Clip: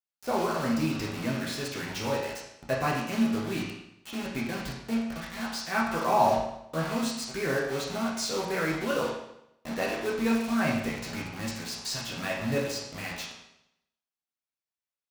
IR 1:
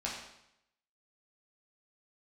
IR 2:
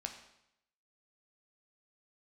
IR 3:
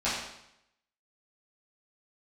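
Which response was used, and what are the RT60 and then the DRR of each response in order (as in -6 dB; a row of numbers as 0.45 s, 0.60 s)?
1; 0.80 s, 0.80 s, 0.80 s; -5.0 dB, 3.5 dB, -12.0 dB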